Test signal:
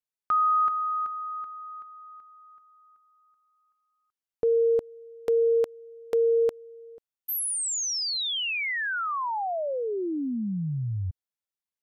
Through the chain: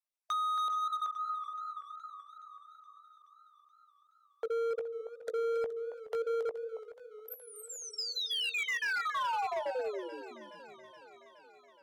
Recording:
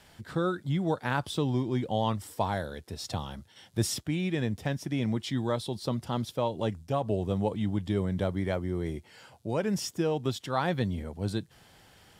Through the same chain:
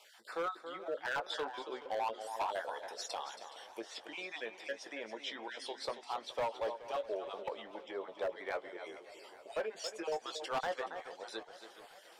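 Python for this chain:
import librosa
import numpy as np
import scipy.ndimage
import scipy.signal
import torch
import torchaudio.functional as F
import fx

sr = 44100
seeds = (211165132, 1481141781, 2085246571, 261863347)

y = fx.spec_dropout(x, sr, seeds[0], share_pct=28)
y = fx.env_lowpass_down(y, sr, base_hz=1200.0, full_db=-23.0)
y = scipy.signal.sosfilt(scipy.signal.butter(4, 500.0, 'highpass', fs=sr, output='sos'), y)
y = fx.doubler(y, sr, ms=18.0, db=-10.0)
y = y + 10.0 ** (-11.0 / 20.0) * np.pad(y, (int(276 * sr / 1000.0), 0))[:len(y)]
y = np.clip(y, -10.0 ** (-29.0 / 20.0), 10.0 ** (-29.0 / 20.0))
y = fx.echo_warbled(y, sr, ms=423, feedback_pct=67, rate_hz=2.8, cents=89, wet_db=-16.5)
y = y * 10.0 ** (-1.5 / 20.0)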